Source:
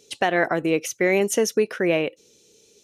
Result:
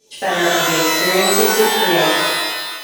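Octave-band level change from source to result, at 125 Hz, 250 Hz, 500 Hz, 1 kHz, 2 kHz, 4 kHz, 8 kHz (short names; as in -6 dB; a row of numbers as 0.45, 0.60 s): +4.0, +4.0, +4.5, +11.5, +9.0, +18.5, +11.0 dB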